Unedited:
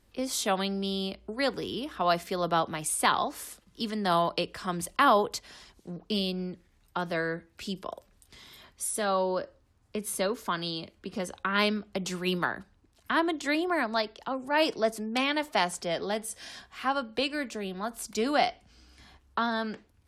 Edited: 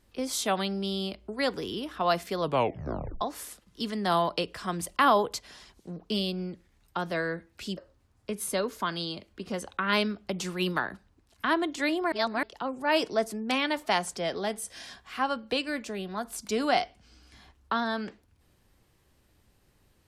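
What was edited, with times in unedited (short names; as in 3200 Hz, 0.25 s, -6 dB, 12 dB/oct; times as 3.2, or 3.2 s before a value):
2.4 tape stop 0.81 s
7.77–9.43 cut
13.78–14.09 reverse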